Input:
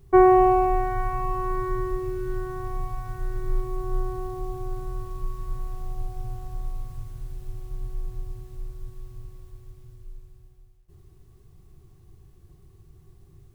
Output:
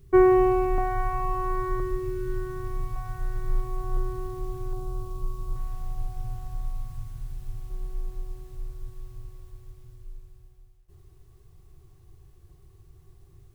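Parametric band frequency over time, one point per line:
parametric band −11 dB 0.76 octaves
820 Hz
from 0:00.78 200 Hz
from 0:01.80 780 Hz
from 0:02.96 290 Hz
from 0:03.97 620 Hz
from 0:04.73 1,800 Hz
from 0:05.56 420 Hz
from 0:07.70 100 Hz
from 0:08.52 210 Hz

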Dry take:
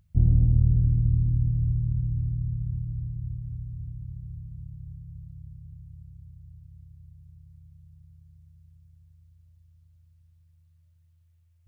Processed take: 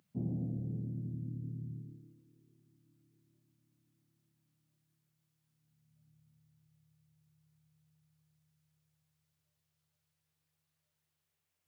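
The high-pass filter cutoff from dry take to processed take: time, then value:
high-pass filter 24 dB per octave
0:01.74 200 Hz
0:02.22 400 Hz
0:05.41 400 Hz
0:06.11 230 Hz

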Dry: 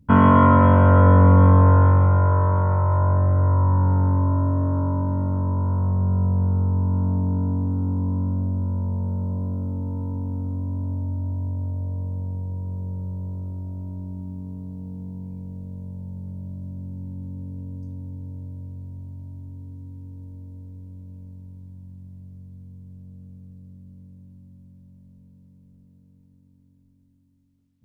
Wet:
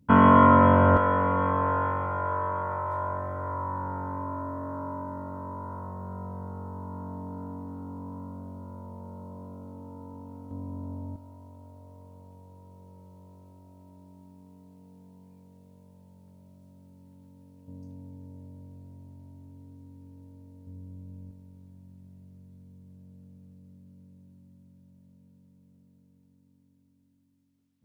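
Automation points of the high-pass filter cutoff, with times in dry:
high-pass filter 6 dB per octave
230 Hz
from 0:00.97 930 Hz
from 0:10.51 370 Hz
from 0:11.16 1,400 Hz
from 0:17.68 380 Hz
from 0:20.67 120 Hz
from 0:21.31 310 Hz

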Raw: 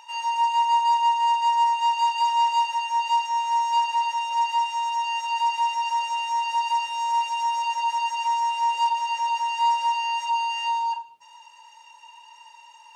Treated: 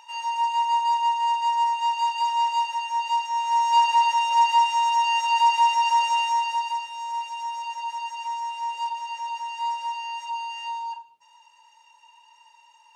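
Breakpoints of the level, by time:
0:03.28 −2 dB
0:03.86 +4.5 dB
0:06.20 +4.5 dB
0:06.87 −6.5 dB

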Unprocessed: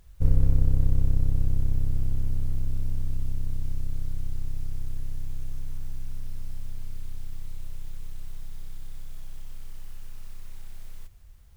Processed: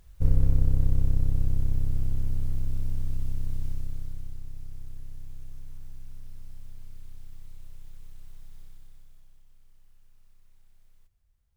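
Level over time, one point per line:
0:03.65 −1 dB
0:04.42 −8.5 dB
0:08.61 −8.5 dB
0:09.44 −19 dB

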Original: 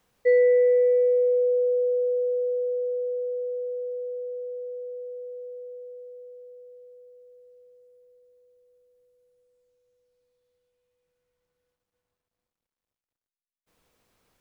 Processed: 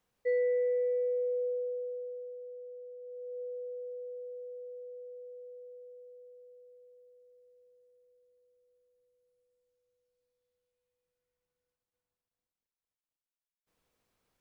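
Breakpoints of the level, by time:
0:01.46 −10.5 dB
0:02.38 −19 dB
0:02.99 −19 dB
0:03.41 −9.5 dB

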